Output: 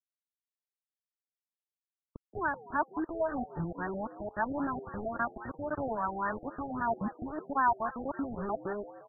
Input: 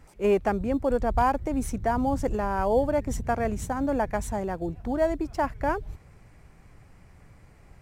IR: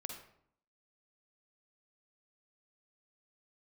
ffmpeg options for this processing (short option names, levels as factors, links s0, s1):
-filter_complex "[0:a]areverse,bandreject=f=480:w=12,acrossover=split=790[s0][s1];[s0]acompressor=threshold=0.01:ratio=10[s2];[s2][s1]amix=inputs=2:normalize=0,highpass=120,equalizer=f=180:t=q:w=4:g=5,equalizer=f=520:t=q:w=4:g=-10,equalizer=f=790:t=q:w=4:g=-10,lowpass=f=2700:w=0.5412,lowpass=f=2700:w=1.3066,acrusher=bits=6:mix=0:aa=0.000001,aphaser=in_gain=1:out_gain=1:delay=3.6:decay=0.36:speed=1:type=sinusoidal,atempo=0.86,asplit=2[s3][s4];[s4]asplit=4[s5][s6][s7][s8];[s5]adelay=175,afreqshift=120,volume=0.224[s9];[s6]adelay=350,afreqshift=240,volume=0.101[s10];[s7]adelay=525,afreqshift=360,volume=0.0452[s11];[s8]adelay=700,afreqshift=480,volume=0.0204[s12];[s9][s10][s11][s12]amix=inputs=4:normalize=0[s13];[s3][s13]amix=inputs=2:normalize=0,afftfilt=real='re*lt(b*sr/1024,790*pow(1900/790,0.5+0.5*sin(2*PI*3.7*pts/sr)))':imag='im*lt(b*sr/1024,790*pow(1900/790,0.5+0.5*sin(2*PI*3.7*pts/sr)))':win_size=1024:overlap=0.75,volume=1.58"